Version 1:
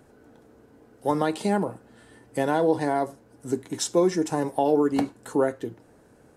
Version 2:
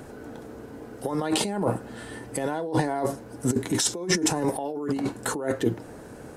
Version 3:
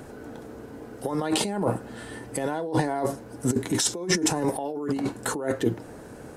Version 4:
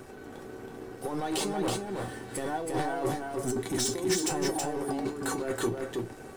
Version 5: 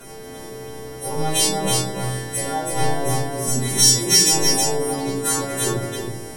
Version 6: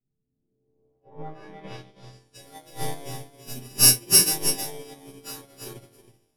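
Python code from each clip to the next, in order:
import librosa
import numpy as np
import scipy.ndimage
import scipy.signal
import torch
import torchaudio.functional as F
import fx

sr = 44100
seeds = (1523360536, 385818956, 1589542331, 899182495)

y1 = fx.over_compress(x, sr, threshold_db=-32.0, ratio=-1.0)
y1 = y1 * librosa.db_to_amplitude(5.5)
y2 = y1
y3 = fx.leveller(y2, sr, passes=3)
y3 = fx.comb_fb(y3, sr, f0_hz=380.0, decay_s=0.16, harmonics='all', damping=0.0, mix_pct=80)
y3 = y3 + 10.0 ** (-3.5 / 20.0) * np.pad(y3, (int(324 * sr / 1000.0), 0))[:len(y3)]
y3 = y3 * librosa.db_to_amplitude(-4.0)
y4 = fx.freq_snap(y3, sr, grid_st=2)
y4 = fx.room_shoebox(y4, sr, seeds[0], volume_m3=69.0, walls='mixed', distance_m=1.7)
y4 = y4 * librosa.db_to_amplitude(1.0)
y5 = fx.bit_reversed(y4, sr, seeds[1], block=16)
y5 = fx.filter_sweep_lowpass(y5, sr, from_hz=180.0, to_hz=12000.0, start_s=0.31, end_s=2.5, q=1.3)
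y5 = fx.upward_expand(y5, sr, threshold_db=-35.0, expansion=2.5)
y5 = y5 * librosa.db_to_amplitude(-1.0)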